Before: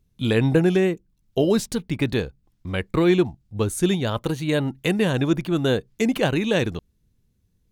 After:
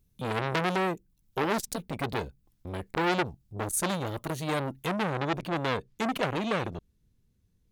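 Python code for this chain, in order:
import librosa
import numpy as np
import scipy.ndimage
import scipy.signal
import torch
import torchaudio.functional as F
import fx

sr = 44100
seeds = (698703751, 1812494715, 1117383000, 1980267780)

y = fx.high_shelf(x, sr, hz=8800.0, db=fx.steps((0.0, 11.0), (4.85, -2.0)))
y = fx.transformer_sat(y, sr, knee_hz=2500.0)
y = y * 10.0 ** (-3.0 / 20.0)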